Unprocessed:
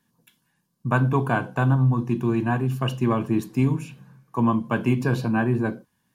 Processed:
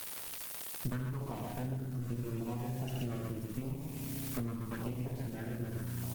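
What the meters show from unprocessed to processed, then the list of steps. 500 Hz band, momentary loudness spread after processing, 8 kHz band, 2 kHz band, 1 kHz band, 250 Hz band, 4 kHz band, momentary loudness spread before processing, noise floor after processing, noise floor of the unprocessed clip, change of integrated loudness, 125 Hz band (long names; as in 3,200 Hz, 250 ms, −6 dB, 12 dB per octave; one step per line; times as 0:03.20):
−16.5 dB, 2 LU, can't be measured, −20.0 dB, −20.0 dB, −16.5 dB, −9.0 dB, 8 LU, −44 dBFS, −72 dBFS, −15.5 dB, −14.5 dB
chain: spring reverb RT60 2.8 s, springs 33 ms, chirp 45 ms, DRR 6.5 dB
half-wave rectification
low-shelf EQ 260 Hz +8 dB
loudspeakers that aren't time-aligned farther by 15 metres −12 dB, 26 metres −7 dB, 45 metres −4 dB
background noise blue −41 dBFS
auto-filter notch saw down 0.83 Hz 660–1,800 Hz
speech leveller within 5 dB 2 s
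surface crackle 280 per second −29 dBFS
low-shelf EQ 61 Hz −5 dB
downward compressor 16 to 1, threshold −30 dBFS, peak gain reduction 20.5 dB
hum removal 55.46 Hz, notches 8
Opus 20 kbit/s 48,000 Hz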